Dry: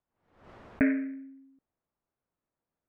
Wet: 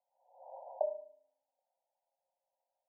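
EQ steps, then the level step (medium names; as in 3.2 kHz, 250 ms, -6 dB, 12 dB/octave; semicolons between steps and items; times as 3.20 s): rippled Chebyshev high-pass 520 Hz, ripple 6 dB; brick-wall FIR low-pass 1 kHz; +10.5 dB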